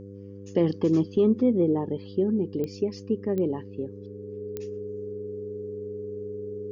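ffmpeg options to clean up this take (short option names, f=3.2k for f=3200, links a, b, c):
-af "adeclick=t=4,bandreject=f=99.3:t=h:w=4,bandreject=f=198.6:t=h:w=4,bandreject=f=297.9:t=h:w=4,bandreject=f=397.2:t=h:w=4,bandreject=f=496.5:t=h:w=4,bandreject=f=420:w=30"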